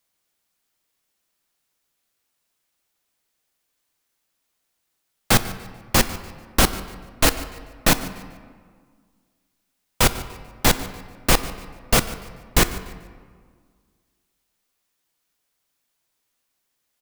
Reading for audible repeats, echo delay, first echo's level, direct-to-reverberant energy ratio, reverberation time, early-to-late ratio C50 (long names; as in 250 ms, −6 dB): 2, 146 ms, −19.0 dB, 10.5 dB, 1.8 s, 12.5 dB